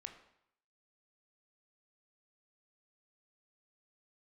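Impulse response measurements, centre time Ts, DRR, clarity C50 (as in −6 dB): 16 ms, 5.5 dB, 9.0 dB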